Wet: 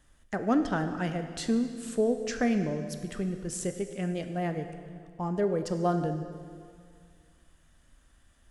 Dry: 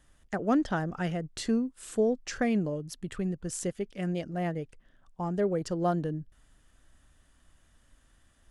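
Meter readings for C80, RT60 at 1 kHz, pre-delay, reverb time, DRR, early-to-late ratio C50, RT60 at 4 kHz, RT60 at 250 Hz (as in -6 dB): 9.5 dB, 2.1 s, 10 ms, 2.2 s, 7.0 dB, 8.5 dB, 1.9 s, 2.4 s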